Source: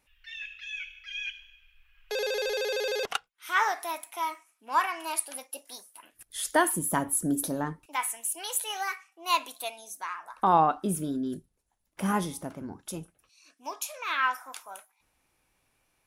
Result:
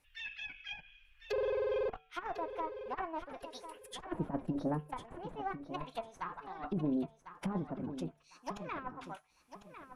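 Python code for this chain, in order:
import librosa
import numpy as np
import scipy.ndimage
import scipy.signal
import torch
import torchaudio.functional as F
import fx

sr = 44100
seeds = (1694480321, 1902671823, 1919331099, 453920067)

p1 = fx.cheby_harmonics(x, sr, harmonics=(6, 7), levels_db=(-19, -30), full_scale_db=-10.0)
p2 = fx.over_compress(p1, sr, threshold_db=-30.0, ratio=-0.5)
p3 = fx.comb_fb(p2, sr, f0_hz=150.0, decay_s=0.69, harmonics='odd', damping=0.0, mix_pct=40)
p4 = fx.stretch_vocoder(p3, sr, factor=0.62)
p5 = fx.env_lowpass_down(p4, sr, base_hz=830.0, full_db=-36.0)
p6 = p5 + fx.echo_feedback(p5, sr, ms=1050, feedback_pct=25, wet_db=-11, dry=0)
y = p6 * 10.0 ** (2.5 / 20.0)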